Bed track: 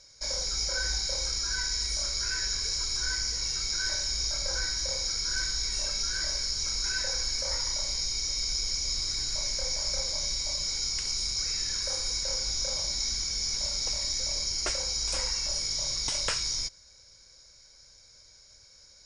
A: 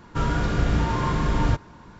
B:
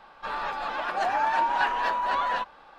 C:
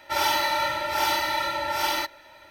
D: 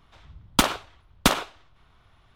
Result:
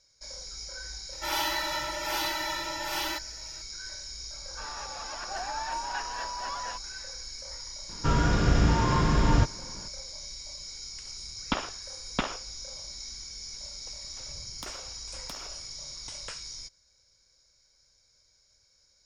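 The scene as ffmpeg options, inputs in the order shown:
ffmpeg -i bed.wav -i cue0.wav -i cue1.wav -i cue2.wav -i cue3.wav -filter_complex "[4:a]asplit=2[link_01][link_02];[0:a]volume=-10.5dB[link_03];[3:a]aecho=1:1:6.2:0.96[link_04];[link_01]lowpass=frequency=3500:width=0.5412,lowpass=frequency=3500:width=1.3066[link_05];[link_02]acompressor=threshold=-42dB:ratio=6:attack=3.2:release=140:knee=1:detection=peak[link_06];[link_04]atrim=end=2.5,asetpts=PTS-STARTPTS,volume=-7.5dB,afade=type=in:duration=0.004:curve=hsin,afade=type=out:start_time=2.496:duration=0.004:curve=hsin,adelay=1120[link_07];[2:a]atrim=end=2.78,asetpts=PTS-STARTPTS,volume=-10dB,afade=type=in:duration=0.004:curve=hsin,afade=type=out:start_time=2.776:duration=0.004:curve=hsin,adelay=4340[link_08];[1:a]atrim=end=1.99,asetpts=PTS-STARTPTS,volume=-0.5dB,afade=type=in:duration=0.004:curve=hsin,afade=type=out:start_time=1.986:duration=0.004:curve=hsin,adelay=7890[link_09];[link_05]atrim=end=2.35,asetpts=PTS-STARTPTS,volume=-9dB,afade=type=in:duration=0.004:curve=hsin,afade=type=out:start_time=2.346:duration=0.004:curve=hsin,adelay=10930[link_10];[link_06]atrim=end=2.35,asetpts=PTS-STARTPTS,volume=-1dB,afade=type=in:duration=0.004:curve=hsin,afade=type=out:start_time=2.346:duration=0.004:curve=hsin,adelay=14040[link_11];[link_03][link_07][link_08][link_09][link_10][link_11]amix=inputs=6:normalize=0" out.wav

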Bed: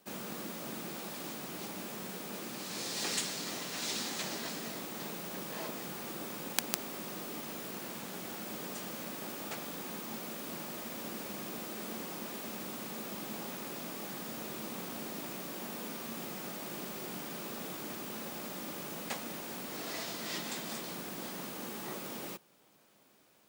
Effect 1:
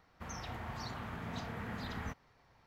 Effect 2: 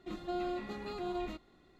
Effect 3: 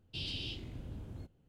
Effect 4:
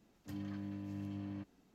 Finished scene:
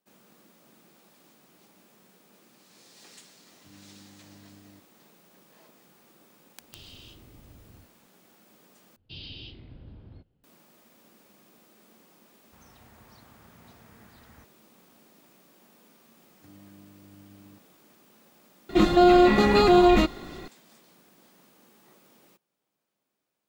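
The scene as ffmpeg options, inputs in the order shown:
ffmpeg -i bed.wav -i cue0.wav -i cue1.wav -i cue2.wav -i cue3.wav -filter_complex "[4:a]asplit=2[link_01][link_02];[3:a]asplit=2[link_03][link_04];[0:a]volume=-17dB[link_05];[link_03]aeval=exprs='clip(val(0),-1,0.00841)':channel_layout=same[link_06];[link_04]aresample=11025,aresample=44100[link_07];[2:a]alimiter=level_in=30.5dB:limit=-1dB:release=50:level=0:latency=1[link_08];[link_05]asplit=2[link_09][link_10];[link_09]atrim=end=8.964[link_11];[link_07]atrim=end=1.48,asetpts=PTS-STARTPTS,volume=-2.5dB[link_12];[link_10]atrim=start=10.436[link_13];[link_01]atrim=end=1.74,asetpts=PTS-STARTPTS,volume=-10.5dB,afade=type=in:duration=0.004:curve=hsin,afade=type=out:start_time=1.736:duration=0.004:curve=hsin,adelay=148617S[link_14];[link_06]atrim=end=1.48,asetpts=PTS-STARTPTS,volume=-7.5dB,afade=type=in:duration=0.004:curve=hsin,afade=type=out:start_time=1.476:duration=0.004:curve=hsin,adelay=6590[link_15];[1:a]atrim=end=2.66,asetpts=PTS-STARTPTS,volume=-13.5dB,afade=type=in:duration=0.004:curve=hsin,afade=type=out:start_time=2.656:duration=0.004:curve=hsin,adelay=12320[link_16];[link_02]atrim=end=1.74,asetpts=PTS-STARTPTS,volume=-9dB,afade=type=in:duration=0.004:curve=hsin,afade=type=out:start_time=1.736:duration=0.004:curve=hsin,adelay=16150[link_17];[link_08]atrim=end=1.79,asetpts=PTS-STARTPTS,volume=-7.5dB,afade=type=in:duration=0.004:curve=hsin,afade=type=out:start_time=1.786:duration=0.004:curve=hsin,adelay=18690[link_18];[link_11][link_12]acrossfade=duration=0.004:curve1=hsin:curve2=hsin[link_19];[link_19][link_13]acrossfade=duration=0.004:curve1=hsin:curve2=hsin[link_20];[link_20][link_14][link_15][link_16][link_17][link_18]amix=inputs=6:normalize=0" out.wav

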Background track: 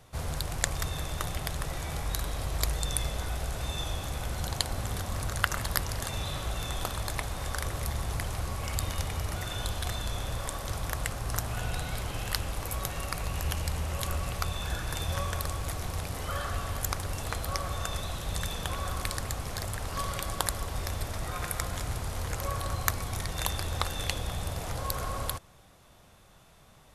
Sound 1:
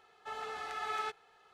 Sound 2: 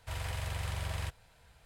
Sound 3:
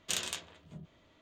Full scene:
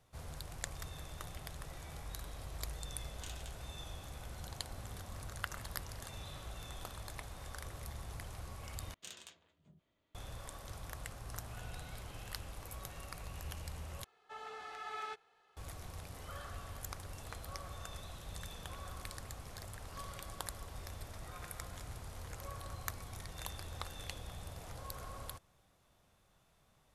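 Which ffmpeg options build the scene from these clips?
ffmpeg -i bed.wav -i cue0.wav -i cue1.wav -i cue2.wav -filter_complex "[3:a]asplit=2[link_01][link_02];[0:a]volume=-13.5dB,asplit=3[link_03][link_04][link_05];[link_03]atrim=end=8.944[link_06];[link_02]atrim=end=1.21,asetpts=PTS-STARTPTS,volume=-16.5dB[link_07];[link_04]atrim=start=10.146:end=14.044[link_08];[1:a]atrim=end=1.53,asetpts=PTS-STARTPTS,volume=-6.5dB[link_09];[link_05]atrim=start=15.566[link_10];[link_01]atrim=end=1.21,asetpts=PTS-STARTPTS,volume=-16.5dB,afade=type=in:duration=0.004:curve=hsin,afade=type=out:start_time=1.206:duration=0.004:curve=hsin,adelay=138033S[link_11];[link_06][link_07]acrossfade=duration=0.004:curve1=hsin:curve2=hsin[link_12];[link_12][link_08]acrossfade=duration=0.004:curve1=hsin:curve2=hsin[link_13];[link_13][link_09]acrossfade=duration=0.004:curve1=hsin:curve2=hsin[link_14];[link_14][link_10]acrossfade=duration=0.004:curve1=hsin:curve2=hsin[link_15];[link_15][link_11]amix=inputs=2:normalize=0" out.wav

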